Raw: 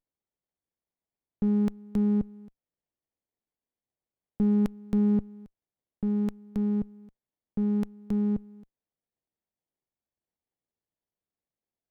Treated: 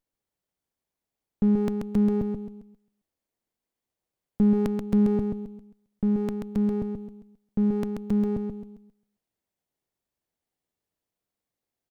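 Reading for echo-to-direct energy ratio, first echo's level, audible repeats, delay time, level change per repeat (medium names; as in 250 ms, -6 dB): -4.5 dB, -5.0 dB, 3, 133 ms, -10.5 dB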